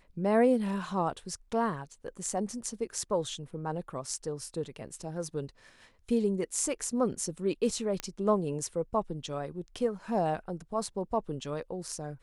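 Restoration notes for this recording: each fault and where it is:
8 pop -17 dBFS

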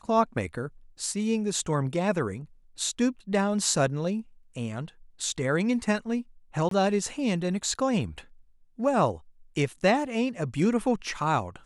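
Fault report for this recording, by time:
6.69–6.71 gap 23 ms

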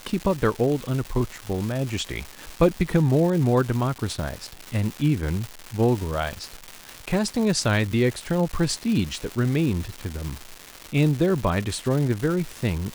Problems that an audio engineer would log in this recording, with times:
crackle 470/s -28 dBFS

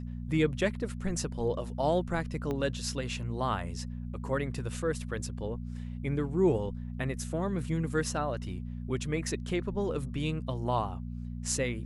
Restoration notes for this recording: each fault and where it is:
hum 60 Hz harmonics 4 -38 dBFS
2.51 pop -22 dBFS

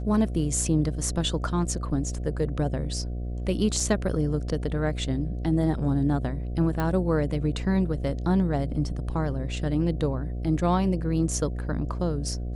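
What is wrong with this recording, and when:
buzz 60 Hz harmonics 12 -31 dBFS
3.8 gap 3 ms
6.8 pop -15 dBFS

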